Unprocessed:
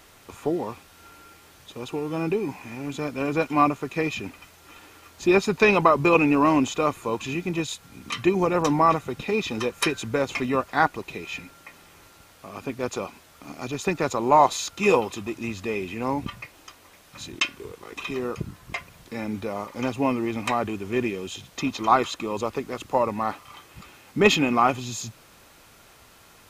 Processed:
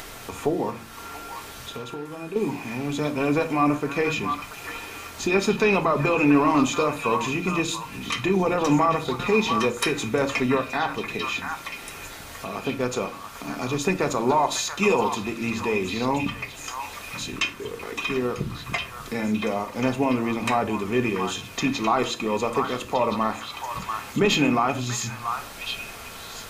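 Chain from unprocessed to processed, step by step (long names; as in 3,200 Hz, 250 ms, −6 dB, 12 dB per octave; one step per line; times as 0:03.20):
hum removal 56.69 Hz, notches 5
in parallel at −2 dB: upward compression, threshold −24 dBFS
on the sum: brickwall limiter −9.5 dBFS, peak gain reduction 10.5 dB
0:00.70–0:02.36: downward compressor, threshold −30 dBFS, peak gain reduction 13.5 dB
echo through a band-pass that steps 685 ms, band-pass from 1,300 Hz, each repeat 1.4 octaves, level −3 dB
on a send at −6 dB: convolution reverb RT60 0.40 s, pre-delay 4 ms
on the sum: level −3 dB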